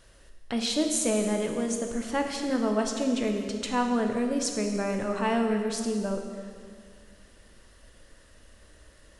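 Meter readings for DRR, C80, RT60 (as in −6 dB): 3.0 dB, 6.0 dB, 2.0 s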